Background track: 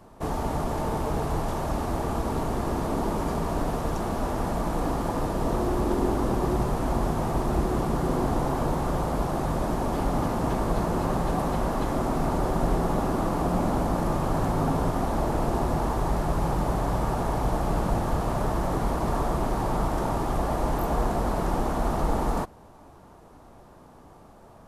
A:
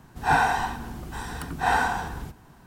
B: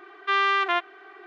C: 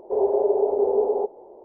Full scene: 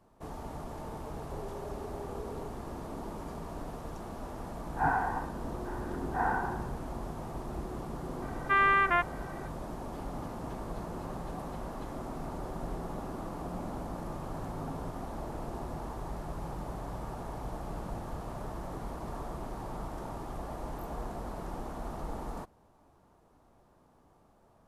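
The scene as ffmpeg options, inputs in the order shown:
ffmpeg -i bed.wav -i cue0.wav -i cue1.wav -i cue2.wav -filter_complex "[0:a]volume=-13.5dB[link_01];[3:a]acompressor=threshold=-29dB:ratio=6:attack=3.2:release=140:knee=1:detection=peak[link_02];[1:a]lowpass=frequency=1600:width=0.5412,lowpass=frequency=1600:width=1.3066[link_03];[2:a]highshelf=frequency=2900:width_type=q:width=1.5:gain=-13.5[link_04];[link_02]atrim=end=1.64,asetpts=PTS-STARTPTS,volume=-12dB,afade=type=in:duration=0.004:curve=hsin,afade=type=out:start_time=1.636:duration=0.004:curve=hsin,adelay=1220[link_05];[link_03]atrim=end=2.66,asetpts=PTS-STARTPTS,volume=-7.5dB,afade=type=in:duration=0.004:curve=hsin,afade=type=out:start_time=2.656:duration=0.004:curve=hsin,adelay=199773S[link_06];[link_04]atrim=end=1.26,asetpts=PTS-STARTPTS,volume=-4dB,afade=type=in:duration=0.004:curve=hsin,afade=type=out:start_time=1.256:duration=0.004:curve=hsin,adelay=8220[link_07];[link_01][link_05][link_06][link_07]amix=inputs=4:normalize=0" out.wav

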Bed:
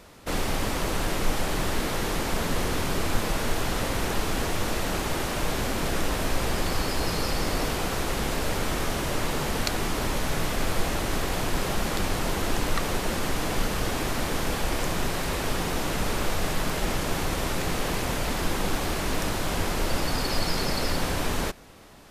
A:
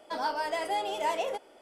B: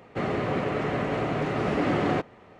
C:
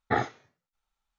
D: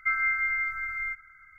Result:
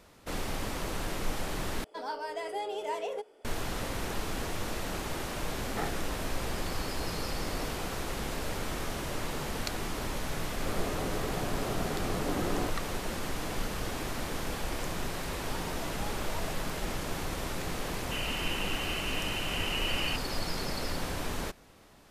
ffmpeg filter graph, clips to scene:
ffmpeg -i bed.wav -i cue0.wav -i cue1.wav -i cue2.wav -filter_complex "[1:a]asplit=2[link_01][link_02];[2:a]asplit=2[link_03][link_04];[0:a]volume=-7.5dB[link_05];[link_01]equalizer=frequency=430:width=7.4:gain=14.5[link_06];[link_03]asuperstop=centerf=3800:order=4:qfactor=0.55[link_07];[link_04]lowpass=frequency=2700:width_type=q:width=0.5098,lowpass=frequency=2700:width_type=q:width=0.6013,lowpass=frequency=2700:width_type=q:width=0.9,lowpass=frequency=2700:width_type=q:width=2.563,afreqshift=-3200[link_08];[link_05]asplit=2[link_09][link_10];[link_09]atrim=end=1.844[link_11];[link_06]atrim=end=1.61,asetpts=PTS-STARTPTS,volume=-6.5dB[link_12];[link_10]atrim=start=3.446[link_13];[3:a]atrim=end=1.18,asetpts=PTS-STARTPTS,volume=-10.5dB,afade=type=in:duration=0.004:curve=hsin,afade=type=out:start_time=1.176:duration=0.004:curve=hsin,adelay=5660[link_14];[link_07]atrim=end=2.59,asetpts=PTS-STARTPTS,volume=-9dB,afade=type=in:duration=0.004:curve=hsin,afade=type=out:start_time=2.586:duration=0.004:curve=hsin,adelay=10490[link_15];[link_02]atrim=end=1.61,asetpts=PTS-STARTPTS,volume=-15dB,afade=type=in:duration=0.004:curve=hsin,afade=type=out:start_time=1.606:duration=0.004:curve=hsin,adelay=15290[link_16];[link_08]atrim=end=2.59,asetpts=PTS-STARTPTS,volume=-10dB,afade=type=in:duration=0.004:curve=hsin,afade=type=out:start_time=2.586:duration=0.004:curve=hsin,adelay=17950[link_17];[link_11][link_12]acrossfade=duration=0.004:curve1=hsin:curve2=hsin[link_18];[link_18][link_13]acrossfade=duration=0.004:curve1=hsin:curve2=hsin[link_19];[link_19][link_14][link_15][link_16][link_17]amix=inputs=5:normalize=0" out.wav

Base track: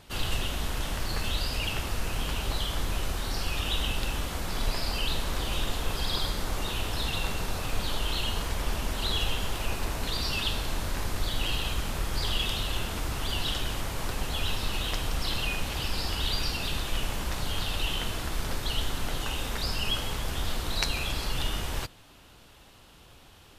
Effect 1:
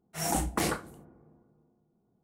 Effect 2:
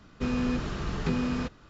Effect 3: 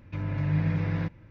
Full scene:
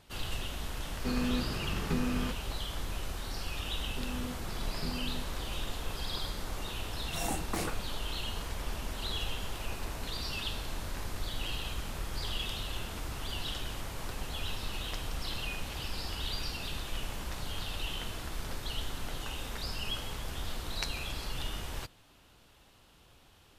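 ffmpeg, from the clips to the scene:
ffmpeg -i bed.wav -i cue0.wav -i cue1.wav -filter_complex "[2:a]asplit=2[link_01][link_02];[0:a]volume=-7dB[link_03];[link_02]lowpass=1500[link_04];[link_01]atrim=end=1.69,asetpts=PTS-STARTPTS,volume=-4dB,afade=type=in:duration=0.004:curve=hsin,afade=type=out:start_time=1.686:duration=0.004:curve=hsin,adelay=840[link_05];[link_04]atrim=end=1.69,asetpts=PTS-STARTPTS,volume=-12dB,afade=type=in:duration=0.004:curve=hsin,afade=type=out:start_time=1.686:duration=0.004:curve=hsin,adelay=3760[link_06];[1:a]atrim=end=2.23,asetpts=PTS-STARTPTS,volume=-6.5dB,afade=type=in:duration=0.004:curve=hsin,afade=type=out:start_time=2.226:duration=0.004:curve=hsin,adelay=6960[link_07];[link_03][link_05][link_06][link_07]amix=inputs=4:normalize=0" out.wav

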